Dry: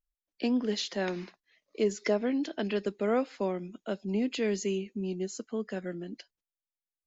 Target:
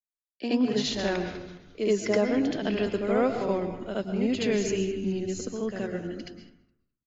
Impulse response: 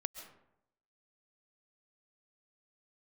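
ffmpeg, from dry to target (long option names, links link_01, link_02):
-filter_complex "[0:a]asplit=6[link_01][link_02][link_03][link_04][link_05][link_06];[link_02]adelay=208,afreqshift=-100,volume=-19dB[link_07];[link_03]adelay=416,afreqshift=-200,volume=-23.9dB[link_08];[link_04]adelay=624,afreqshift=-300,volume=-28.8dB[link_09];[link_05]adelay=832,afreqshift=-400,volume=-33.6dB[link_10];[link_06]adelay=1040,afreqshift=-500,volume=-38.5dB[link_11];[link_01][link_07][link_08][link_09][link_10][link_11]amix=inputs=6:normalize=0,agate=range=-33dB:threshold=-51dB:ratio=3:detection=peak,asplit=2[link_12][link_13];[1:a]atrim=start_sample=2205,asetrate=48510,aresample=44100,adelay=74[link_14];[link_13][link_14]afir=irnorm=-1:irlink=0,volume=7.5dB[link_15];[link_12][link_15]amix=inputs=2:normalize=0,volume=-2.5dB"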